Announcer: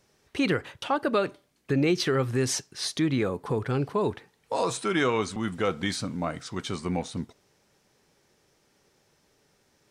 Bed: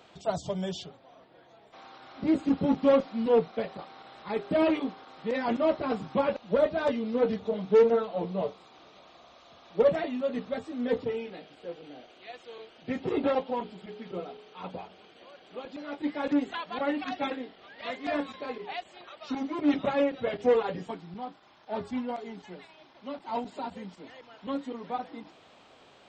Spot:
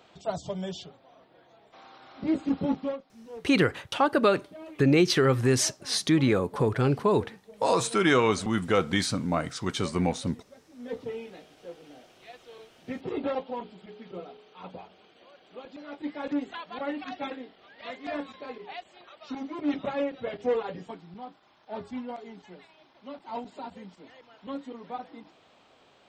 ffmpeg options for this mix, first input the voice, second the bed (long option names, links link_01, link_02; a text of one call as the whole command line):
ffmpeg -i stem1.wav -i stem2.wav -filter_complex "[0:a]adelay=3100,volume=3dB[link_01];[1:a]volume=15dB,afade=type=out:start_time=2.69:duration=0.29:silence=0.11885,afade=type=in:start_time=10.68:duration=0.45:silence=0.149624[link_02];[link_01][link_02]amix=inputs=2:normalize=0" out.wav